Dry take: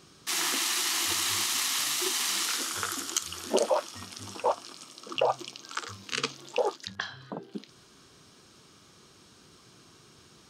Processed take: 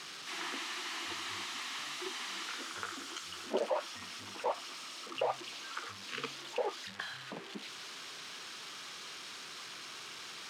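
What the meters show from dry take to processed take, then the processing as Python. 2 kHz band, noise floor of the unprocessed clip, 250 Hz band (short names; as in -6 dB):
-5.5 dB, -57 dBFS, -7.5 dB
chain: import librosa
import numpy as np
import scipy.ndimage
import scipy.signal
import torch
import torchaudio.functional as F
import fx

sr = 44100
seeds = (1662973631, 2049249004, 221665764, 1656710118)

y = x + 0.5 * 10.0 ** (-16.0 / 20.0) * np.diff(np.sign(x), prepend=np.sign(x[:1]))
y = fx.bandpass_edges(y, sr, low_hz=120.0, high_hz=2500.0)
y = y * librosa.db_to_amplitude(-7.5)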